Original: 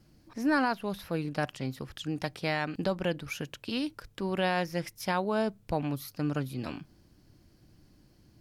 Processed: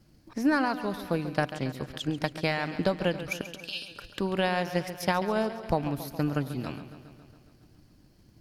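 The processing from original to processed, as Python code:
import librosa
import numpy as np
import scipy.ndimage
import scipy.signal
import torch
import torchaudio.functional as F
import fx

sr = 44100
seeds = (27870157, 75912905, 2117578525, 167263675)

y = fx.transient(x, sr, attack_db=6, sustain_db=0)
y = fx.brickwall_highpass(y, sr, low_hz=2300.0, at=(3.41, 3.91))
y = fx.echo_warbled(y, sr, ms=138, feedback_pct=67, rate_hz=2.8, cents=58, wet_db=-13.0)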